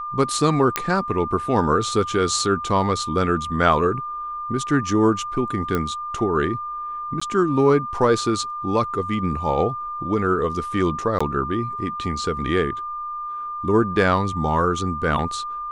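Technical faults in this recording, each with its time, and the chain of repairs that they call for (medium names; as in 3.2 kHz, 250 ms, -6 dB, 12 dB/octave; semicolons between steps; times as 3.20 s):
whine 1.2 kHz -27 dBFS
0.76 s: pop -3 dBFS
5.75 s: pop -10 dBFS
7.20–7.21 s: dropout 15 ms
11.19–11.21 s: dropout 15 ms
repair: de-click; band-stop 1.2 kHz, Q 30; interpolate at 7.20 s, 15 ms; interpolate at 11.19 s, 15 ms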